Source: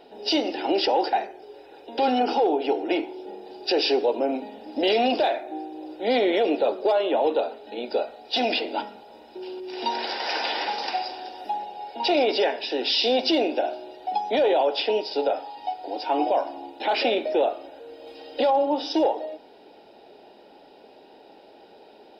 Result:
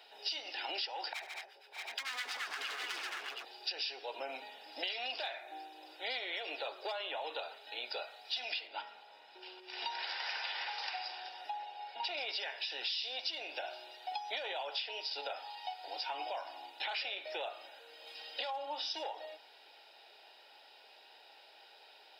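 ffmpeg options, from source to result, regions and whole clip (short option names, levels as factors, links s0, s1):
-filter_complex "[0:a]asettb=1/sr,asplit=3[s0][s1][s2];[s0]atrim=end=1.134[s3];[s1]atrim=start=1.13:end=3.45,asetpts=PTS-STARTPTS,afade=t=in:d=0.004:c=qsin,afade=t=out:st=2.316:d=0.004:c=qsin,aeval=exprs='0.0708*(abs(mod(val(0)/0.0708+3,4)-2)-1)':c=same,acrossover=split=950[s4][s5];[s4]aeval=exprs='val(0)*(1-1/2+1/2*cos(2*PI*8.8*n/s))':c=same[s6];[s5]aeval=exprs='val(0)*(1-1/2-1/2*cos(2*PI*8.8*n/s))':c=same[s7];[s6][s7]amix=inputs=2:normalize=0,aecho=1:1:72|145|217|591|632|722:0.178|0.355|0.422|0.188|0.473|0.422,atrim=end_sample=102312[s8];[s2]atrim=start=3.446[s9];[s3][s8]acrossfade=d=0.004:c1=hsin:c2=qsin[s10];[s10][s9]acrossfade=d=0.004:c1=qsin:c2=hsin,asettb=1/sr,asplit=3[s11][s12][s13];[s11]atrim=end=8.674[s14];[s12]atrim=start=8.67:end=12.18,asetpts=PTS-STARTPTS,afade=t=in:d=0.004:c=qsin,afade=t=out:st=3.506:d=0.004:c=qsin,lowpass=f=2600:p=1,aeval=exprs='val(0)+0.00251*(sin(2*PI*50*n/s)+sin(2*PI*2*50*n/s)/2+sin(2*PI*3*50*n/s)/3+sin(2*PI*4*50*n/s)/4+sin(2*PI*5*50*n/s)/5)':c=same[s15];[s13]atrim=start=12.176[s16];[s14][s15]acrossfade=d=0.004:c1=hsin:c2=qsin[s17];[s17][s16]acrossfade=d=0.004:c1=qsin:c2=hsin,highpass=1500,acompressor=threshold=0.0126:ratio=6,volume=1.19"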